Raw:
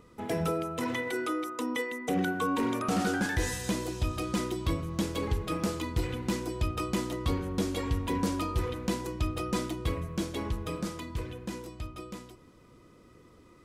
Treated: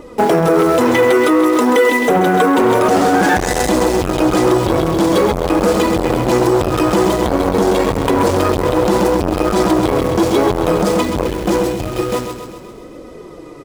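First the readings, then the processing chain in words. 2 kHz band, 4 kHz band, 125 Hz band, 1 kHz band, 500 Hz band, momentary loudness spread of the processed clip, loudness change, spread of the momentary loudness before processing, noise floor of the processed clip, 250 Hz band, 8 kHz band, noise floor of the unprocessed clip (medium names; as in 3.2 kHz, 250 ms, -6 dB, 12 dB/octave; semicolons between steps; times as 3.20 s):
+16.5 dB, +14.5 dB, +12.0 dB, +20.0 dB, +22.5 dB, 5 LU, +18.0 dB, 9 LU, -35 dBFS, +17.5 dB, +14.5 dB, -57 dBFS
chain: high-order bell 530 Hz +8.5 dB; flange 0.54 Hz, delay 3.4 ms, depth 5.4 ms, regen +14%; vibrato 14 Hz 5.1 cents; in parallel at -7 dB: bit crusher 7-bit; on the sum: feedback delay 131 ms, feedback 58%, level -8.5 dB; loudness maximiser +21.5 dB; transformer saturation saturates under 520 Hz; trim -1.5 dB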